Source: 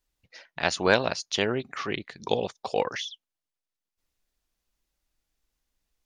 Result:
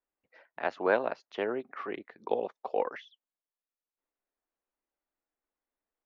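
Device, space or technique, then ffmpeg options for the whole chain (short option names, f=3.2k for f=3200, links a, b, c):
phone in a pocket: -filter_complex "[0:a]lowpass=3.9k,acrossover=split=310 2300:gain=0.0794 1 0.224[a][b][c];[a][b][c]amix=inputs=3:normalize=0,equalizer=f=240:t=o:w=0.77:g=3.5,highshelf=f=2k:g=-9,volume=-2dB"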